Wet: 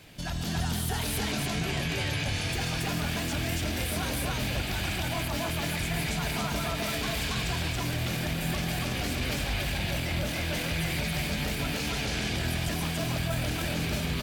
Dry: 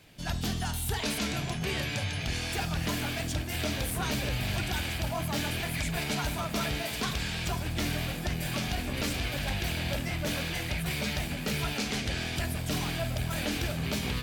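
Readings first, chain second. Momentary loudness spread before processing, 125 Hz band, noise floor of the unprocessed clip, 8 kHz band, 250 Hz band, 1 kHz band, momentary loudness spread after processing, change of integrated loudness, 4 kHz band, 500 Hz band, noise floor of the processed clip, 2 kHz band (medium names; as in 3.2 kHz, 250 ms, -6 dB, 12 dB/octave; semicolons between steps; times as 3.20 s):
2 LU, +1.5 dB, -35 dBFS, +1.5 dB, +1.5 dB, +1.5 dB, 1 LU, +1.5 dB, +1.5 dB, +1.5 dB, -32 dBFS, +1.5 dB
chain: peak limiter -30 dBFS, peak gain reduction 10.5 dB; on a send: loudspeakers at several distances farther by 48 m -10 dB, 96 m 0 dB; on the sum: trim +5 dB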